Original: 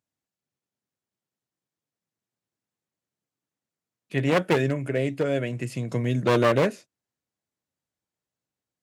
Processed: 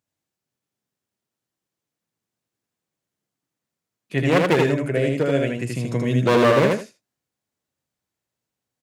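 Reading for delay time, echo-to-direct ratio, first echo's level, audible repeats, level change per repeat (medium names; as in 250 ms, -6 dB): 79 ms, -3.0 dB, -3.0 dB, 2, -13.5 dB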